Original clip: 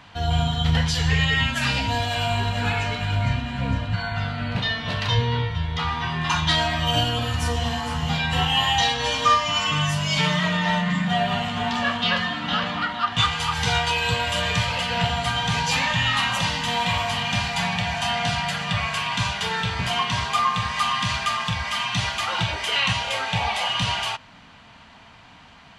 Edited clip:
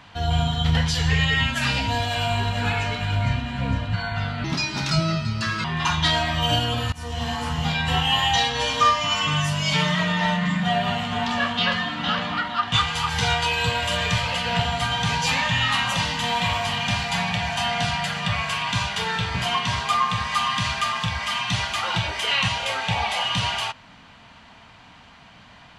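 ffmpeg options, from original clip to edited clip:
-filter_complex "[0:a]asplit=4[s0][s1][s2][s3];[s0]atrim=end=4.444[s4];[s1]atrim=start=4.44:end=6.09,asetpts=PTS-STARTPTS,asetrate=60417,aresample=44100,atrim=end_sample=53113,asetpts=PTS-STARTPTS[s5];[s2]atrim=start=6.086:end=7.37,asetpts=PTS-STARTPTS,afade=t=out:st=1.28:d=0.004:c=hsin:silence=0.0841395[s6];[s3]atrim=start=7.37,asetpts=PTS-STARTPTS,afade=t=in:d=0.4:silence=0.0841395[s7];[s4][s5]acrossfade=d=0.004:c1=hsin:c2=hsin[s8];[s6][s7]concat=n=2:v=0:a=1[s9];[s8][s9]acrossfade=d=0.004:c1=hsin:c2=hsin"

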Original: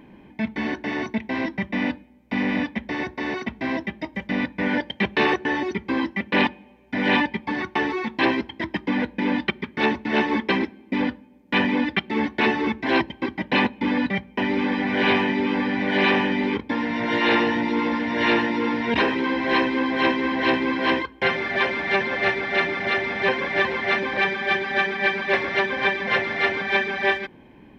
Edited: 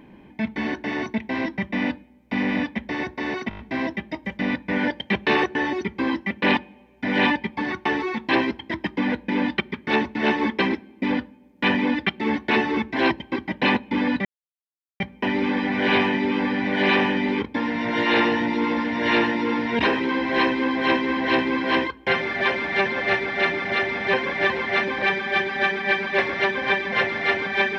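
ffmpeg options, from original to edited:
-filter_complex "[0:a]asplit=7[s0][s1][s2][s3][s4][s5][s6];[s0]atrim=end=3.512[s7];[s1]atrim=start=3.488:end=3.512[s8];[s2]atrim=start=3.488:end=3.512[s9];[s3]atrim=start=3.488:end=3.512[s10];[s4]atrim=start=3.488:end=3.512[s11];[s5]atrim=start=3.488:end=14.15,asetpts=PTS-STARTPTS,afade=t=out:st=10.658:d=0.004:c=hsin,apad=pad_dur=0.75[s12];[s6]atrim=start=14.15,asetpts=PTS-STARTPTS,afade=t=in:d=0.004:c=hsin[s13];[s7][s8]acrossfade=d=0.004:c1=hsin:c2=hsin[s14];[s14][s9]acrossfade=d=0.004:c1=hsin:c2=hsin[s15];[s15][s10]acrossfade=d=0.004:c1=hsin:c2=hsin[s16];[s16][s11]acrossfade=d=0.004:c1=hsin:c2=hsin[s17];[s12][s13]concat=n=2:v=0:a=1[s18];[s17][s18]acrossfade=d=0.004:c1=hsin:c2=hsin"

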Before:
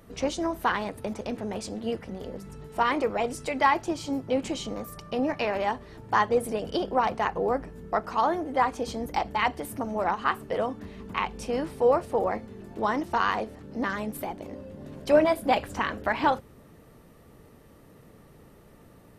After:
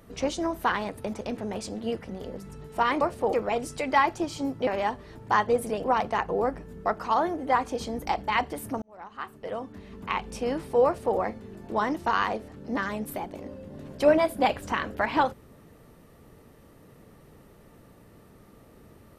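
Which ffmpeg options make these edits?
-filter_complex "[0:a]asplit=6[s0][s1][s2][s3][s4][s5];[s0]atrim=end=3.012[s6];[s1]atrim=start=11.918:end=12.242[s7];[s2]atrim=start=3.008:end=4.352[s8];[s3]atrim=start=5.488:end=6.662[s9];[s4]atrim=start=6.908:end=9.89,asetpts=PTS-STARTPTS,afade=t=out:st=2.978:d=0.004:c=hsin[s10];[s5]atrim=start=9.89,asetpts=PTS-STARTPTS,afade=t=in:d=1.42[s11];[s6][s7]acrossfade=d=0.004:c1=hsin:c2=hsin[s12];[s12][s8]acrossfade=d=0.004:c1=hsin:c2=hsin[s13];[s13][s9]acrossfade=d=0.004:c1=hsin:c2=hsin[s14];[s10][s11]concat=n=2:v=0:a=1[s15];[s14][s15]acrossfade=d=0.004:c1=hsin:c2=hsin"

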